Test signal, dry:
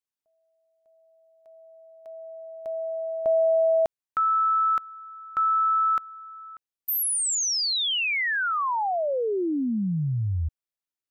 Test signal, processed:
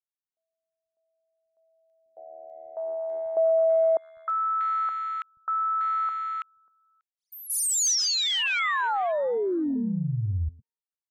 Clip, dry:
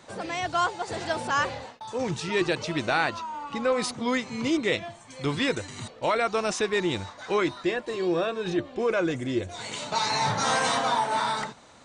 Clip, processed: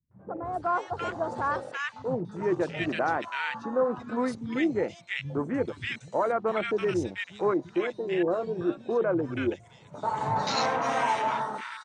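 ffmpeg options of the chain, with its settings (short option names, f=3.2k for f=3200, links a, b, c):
-filter_complex "[0:a]afwtdn=0.0316,adynamicequalizer=threshold=0.00316:dfrequency=6200:dqfactor=3.2:tfrequency=6200:tqfactor=3.2:attack=5:release=100:ratio=0.375:range=2:mode=boostabove:tftype=bell,acrossover=split=160|1500[a][b][c];[b]adelay=110[d];[c]adelay=440[e];[a][d][e]amix=inputs=3:normalize=0"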